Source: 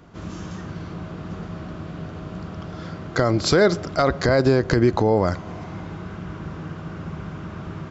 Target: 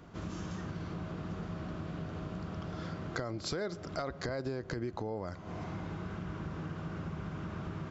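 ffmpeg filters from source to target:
ffmpeg -i in.wav -af "acompressor=threshold=-31dB:ratio=5,volume=-4.5dB" out.wav

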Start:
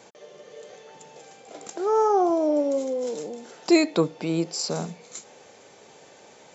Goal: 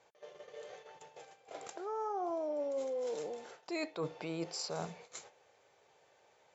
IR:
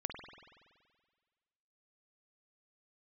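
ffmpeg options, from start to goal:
-af "agate=range=-12dB:threshold=-46dB:ratio=16:detection=peak,lowpass=frequency=2500:poles=1,equalizer=frequency=230:width_type=o:width=1.3:gain=-15,areverse,acompressor=threshold=-33dB:ratio=16,areverse,volume=-1dB"

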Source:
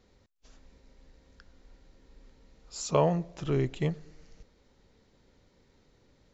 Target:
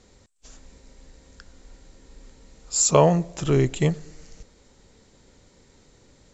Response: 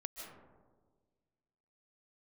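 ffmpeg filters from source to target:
-af "lowpass=frequency=8000:width_type=q:width=8.1,volume=8dB"

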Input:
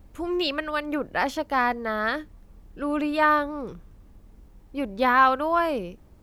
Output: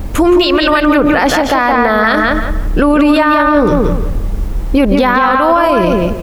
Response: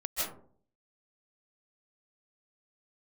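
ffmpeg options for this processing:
-filter_complex "[0:a]acompressor=threshold=-31dB:ratio=5,asplit=2[link_01][link_02];[link_02]adelay=171,lowpass=frequency=3500:poles=1,volume=-4dB,asplit=2[link_03][link_04];[link_04]adelay=171,lowpass=frequency=3500:poles=1,volume=0.26,asplit=2[link_05][link_06];[link_06]adelay=171,lowpass=frequency=3500:poles=1,volume=0.26,asplit=2[link_07][link_08];[link_08]adelay=171,lowpass=frequency=3500:poles=1,volume=0.26[link_09];[link_01][link_03][link_05][link_07][link_09]amix=inputs=5:normalize=0,asplit=2[link_10][link_11];[1:a]atrim=start_sample=2205[link_12];[link_11][link_12]afir=irnorm=-1:irlink=0,volume=-20.5dB[link_13];[link_10][link_13]amix=inputs=2:normalize=0,alimiter=level_in=29.5dB:limit=-1dB:release=50:level=0:latency=1,volume=-1dB"

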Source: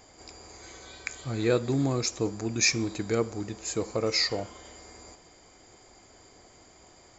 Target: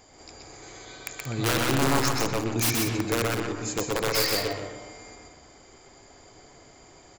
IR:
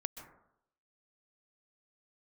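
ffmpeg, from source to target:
-filter_complex "[0:a]aeval=exprs='(mod(8.91*val(0)+1,2)-1)/8.91':channel_layout=same,aecho=1:1:128.3|180.8:0.631|0.316,asplit=2[link_01][link_02];[1:a]atrim=start_sample=2205,lowpass=3400,adelay=121[link_03];[link_02][link_03]afir=irnorm=-1:irlink=0,volume=-1dB[link_04];[link_01][link_04]amix=inputs=2:normalize=0"

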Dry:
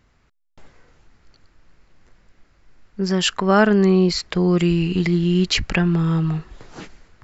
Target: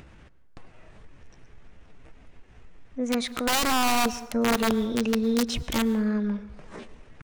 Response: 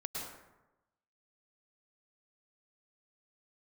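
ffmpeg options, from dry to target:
-filter_complex "[0:a]highshelf=frequency=3000:gain=-11.5,aeval=exprs='(mod(3.55*val(0)+1,2)-1)/3.55':channel_layout=same,asetrate=57191,aresample=44100,atempo=0.771105,acompressor=mode=upward:threshold=-29dB:ratio=2.5,asplit=2[link_01][link_02];[1:a]atrim=start_sample=2205[link_03];[link_02][link_03]afir=irnorm=-1:irlink=0,volume=-14.5dB[link_04];[link_01][link_04]amix=inputs=2:normalize=0,volume=-7dB"

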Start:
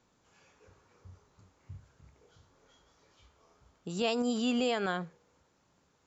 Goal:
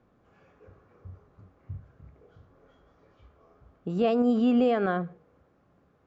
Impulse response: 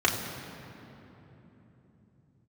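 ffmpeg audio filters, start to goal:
-filter_complex "[0:a]lowpass=frequency=1200:poles=1,aemphasis=mode=reproduction:type=75fm,bandreject=frequency=920:width=6.6,asplit=2[link_01][link_02];[1:a]atrim=start_sample=2205,afade=type=out:start_time=0.3:duration=0.01,atrim=end_sample=13671,asetrate=70560,aresample=44100[link_03];[link_02][link_03]afir=irnorm=-1:irlink=0,volume=-27.5dB[link_04];[link_01][link_04]amix=inputs=2:normalize=0,volume=7dB"

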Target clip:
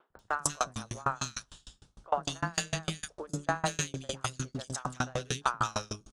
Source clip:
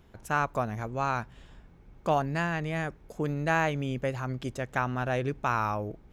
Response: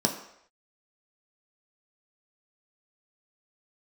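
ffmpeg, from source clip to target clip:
-filter_complex "[0:a]equalizer=frequency=1300:width_type=o:width=0.65:gain=7.5,asplit=2[link_01][link_02];[1:a]atrim=start_sample=2205,adelay=28[link_03];[link_02][link_03]afir=irnorm=-1:irlink=0,volume=-26.5dB[link_04];[link_01][link_04]amix=inputs=2:normalize=0,asplit=2[link_05][link_06];[link_06]asetrate=55563,aresample=44100,atempo=0.793701,volume=-16dB[link_07];[link_05][link_07]amix=inputs=2:normalize=0,aresample=22050,aresample=44100,aexciter=amount=11.4:drive=1.8:freq=3200,acontrast=87,acrossover=split=370|1900[link_08][link_09][link_10];[link_08]adelay=100[link_11];[link_10]adelay=190[link_12];[link_11][link_09][link_12]amix=inputs=3:normalize=0,aeval=exprs='val(0)*pow(10,-33*if(lt(mod(6.6*n/s,1),2*abs(6.6)/1000),1-mod(6.6*n/s,1)/(2*abs(6.6)/1000),(mod(6.6*n/s,1)-2*abs(6.6)/1000)/(1-2*abs(6.6)/1000))/20)':channel_layout=same,volume=-4.5dB"

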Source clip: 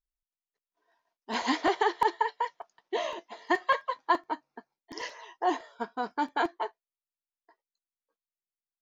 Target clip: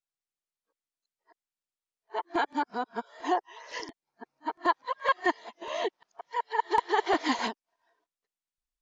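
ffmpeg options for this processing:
ffmpeg -i in.wav -af "areverse,aresample=22050,aresample=44100" out.wav

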